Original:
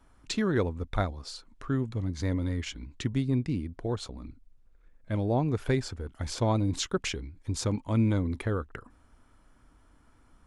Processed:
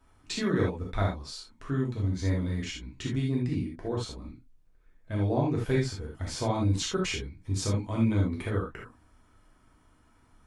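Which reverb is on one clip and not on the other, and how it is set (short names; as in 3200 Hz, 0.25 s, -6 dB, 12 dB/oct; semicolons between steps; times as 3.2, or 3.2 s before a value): non-linear reverb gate 0.1 s flat, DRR -3.5 dB; gain -4.5 dB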